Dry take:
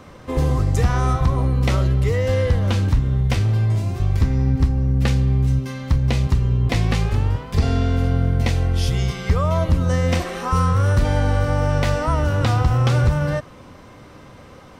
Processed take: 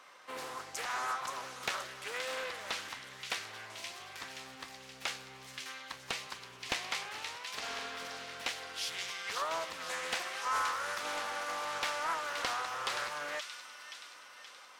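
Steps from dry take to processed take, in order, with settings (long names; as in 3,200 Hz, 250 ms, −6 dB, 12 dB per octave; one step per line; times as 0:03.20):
high-pass filter 1,100 Hz 12 dB per octave
delay with a high-pass on its return 525 ms, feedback 56%, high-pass 2,400 Hz, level −5 dB
highs frequency-modulated by the lows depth 0.41 ms
level −6 dB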